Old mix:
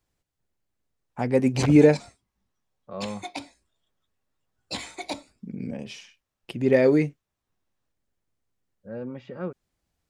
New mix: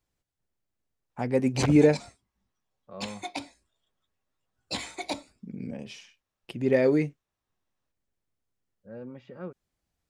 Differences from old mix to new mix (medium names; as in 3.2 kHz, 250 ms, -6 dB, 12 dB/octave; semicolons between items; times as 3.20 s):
first voice -3.5 dB; second voice -6.5 dB